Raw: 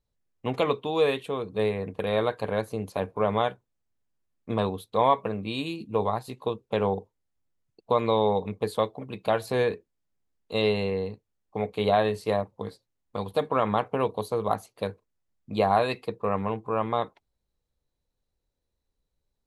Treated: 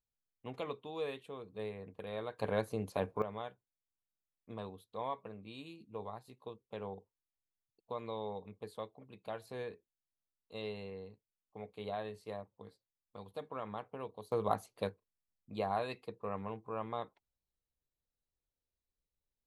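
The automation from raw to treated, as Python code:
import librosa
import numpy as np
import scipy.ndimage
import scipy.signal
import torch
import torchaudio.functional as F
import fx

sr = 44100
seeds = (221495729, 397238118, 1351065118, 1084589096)

y = fx.gain(x, sr, db=fx.steps((0.0, -16.0), (2.39, -6.0), (3.22, -18.0), (14.32, -6.5), (14.89, -13.0)))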